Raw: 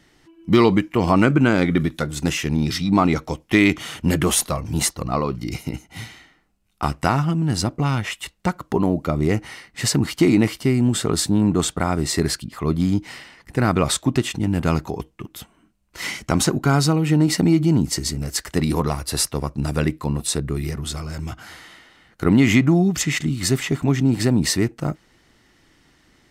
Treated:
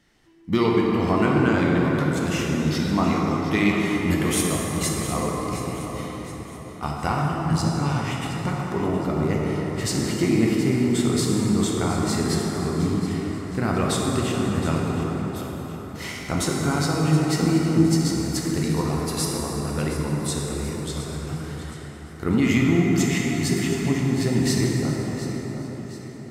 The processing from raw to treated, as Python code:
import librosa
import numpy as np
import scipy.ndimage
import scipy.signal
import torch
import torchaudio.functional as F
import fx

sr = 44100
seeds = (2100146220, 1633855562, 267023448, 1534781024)

y = fx.echo_feedback(x, sr, ms=718, feedback_pct=46, wet_db=-13)
y = fx.rev_plate(y, sr, seeds[0], rt60_s=5.0, hf_ratio=0.45, predelay_ms=0, drr_db=-3.0)
y = y * librosa.db_to_amplitude(-7.5)